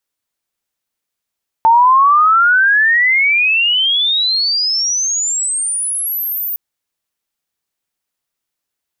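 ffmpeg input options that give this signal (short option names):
-f lavfi -i "aevalsrc='pow(10,(-5.5-12*t/4.91)/20)*sin(2*PI*890*4.91/log(15000/890)*(exp(log(15000/890)*t/4.91)-1))':d=4.91:s=44100"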